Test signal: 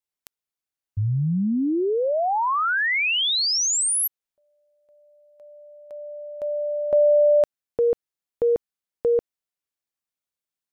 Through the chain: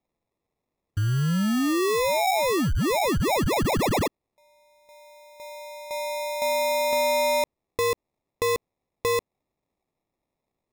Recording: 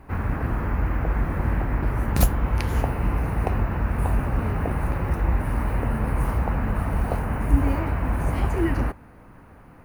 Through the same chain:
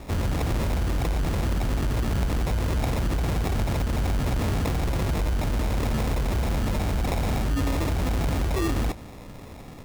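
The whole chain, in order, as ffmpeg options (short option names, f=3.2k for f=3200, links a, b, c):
-af "acompressor=threshold=-27dB:ratio=6:attack=9.7:release=44:knee=6:detection=peak,acrusher=samples=29:mix=1:aa=0.000001,asoftclip=type=tanh:threshold=-25dB,volume=6.5dB"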